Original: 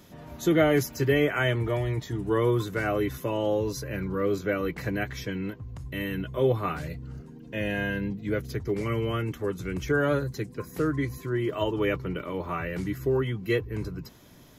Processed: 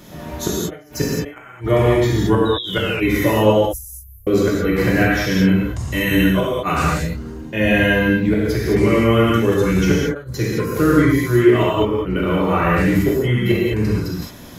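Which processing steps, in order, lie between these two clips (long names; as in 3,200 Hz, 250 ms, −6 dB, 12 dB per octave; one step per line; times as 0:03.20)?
0:03.50–0:04.27: inverse Chebyshev band-stop filter 160–3,200 Hz, stop band 60 dB
0:05.55–0:06.94: parametric band 6,900 Hz +10.5 dB 1.2 octaves
gate with flip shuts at −16 dBFS, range −39 dB
0:02.45–0:03.24: sound drawn into the spectrogram fall 1,800–3,900 Hz −43 dBFS
reverb whose tail is shaped and stops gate 240 ms flat, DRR −5.5 dB
level that may fall only so fast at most 140 dB per second
level +8.5 dB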